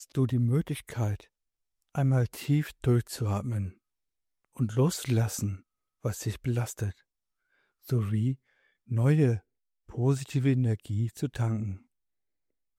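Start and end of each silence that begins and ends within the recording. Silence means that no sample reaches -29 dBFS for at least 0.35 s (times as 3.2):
1.14–1.95
3.66–4.6
5.52–6.05
6.9–7.9
8.33–8.92
9.36–9.98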